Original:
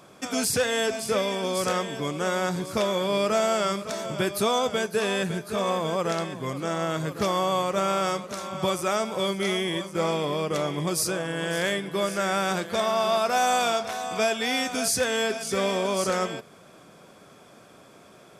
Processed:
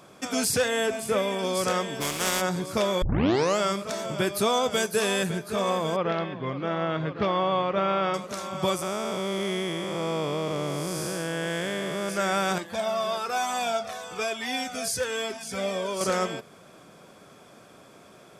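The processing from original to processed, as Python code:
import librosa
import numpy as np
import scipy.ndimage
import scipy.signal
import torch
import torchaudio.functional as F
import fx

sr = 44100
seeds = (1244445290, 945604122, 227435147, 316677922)

y = fx.peak_eq(x, sr, hz=5000.0, db=-9.0, octaves=0.72, at=(0.68, 1.39))
y = fx.spec_flatten(y, sr, power=0.42, at=(2.0, 2.4), fade=0.02)
y = fx.high_shelf(y, sr, hz=fx.line((4.71, 4500.0), (5.29, 9000.0)), db=10.5, at=(4.71, 5.29), fade=0.02)
y = fx.lowpass(y, sr, hz=3500.0, slope=24, at=(5.96, 8.14))
y = fx.spec_blur(y, sr, span_ms=370.0, at=(8.81, 12.08), fade=0.02)
y = fx.comb_cascade(y, sr, direction='falling', hz=1.1, at=(12.58, 16.01))
y = fx.edit(y, sr, fx.tape_start(start_s=3.02, length_s=0.57), tone=tone)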